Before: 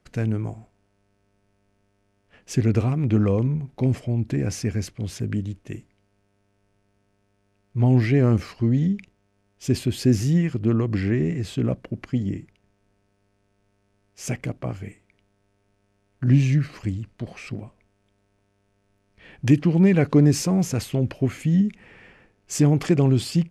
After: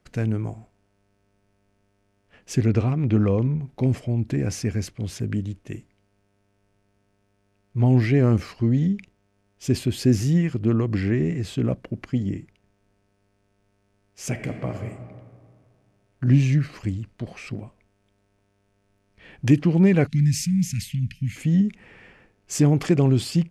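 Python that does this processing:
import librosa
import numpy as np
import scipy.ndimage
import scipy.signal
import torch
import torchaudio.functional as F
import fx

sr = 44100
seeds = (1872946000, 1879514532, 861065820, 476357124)

y = fx.lowpass(x, sr, hz=5900.0, slope=12, at=(2.66, 3.62))
y = fx.reverb_throw(y, sr, start_s=14.3, length_s=0.47, rt60_s=2.0, drr_db=5.0)
y = fx.ellip_bandstop(y, sr, low_hz=200.0, high_hz=2000.0, order=3, stop_db=40, at=(20.06, 21.35), fade=0.02)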